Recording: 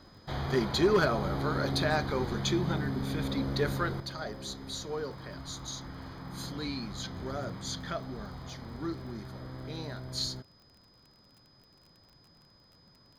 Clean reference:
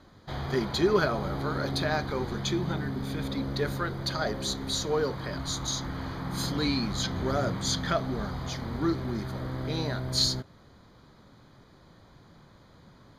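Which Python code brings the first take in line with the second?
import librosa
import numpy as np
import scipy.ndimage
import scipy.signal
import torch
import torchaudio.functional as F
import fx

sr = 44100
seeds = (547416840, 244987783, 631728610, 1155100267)

y = fx.fix_declip(x, sr, threshold_db=-18.0)
y = fx.fix_declick_ar(y, sr, threshold=6.5)
y = fx.notch(y, sr, hz=5000.0, q=30.0)
y = fx.gain(y, sr, db=fx.steps((0.0, 0.0), (4.0, 8.5)))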